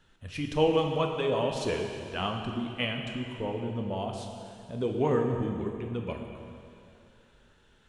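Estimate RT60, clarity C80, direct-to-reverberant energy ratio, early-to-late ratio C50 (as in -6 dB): 2.6 s, 5.0 dB, 2.0 dB, 3.5 dB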